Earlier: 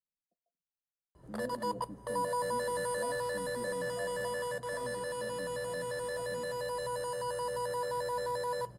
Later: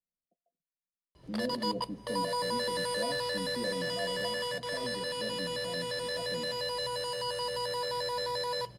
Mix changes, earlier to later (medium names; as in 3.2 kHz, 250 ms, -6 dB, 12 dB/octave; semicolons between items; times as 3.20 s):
speech +7.0 dB; master: add high-order bell 3.5 kHz +13 dB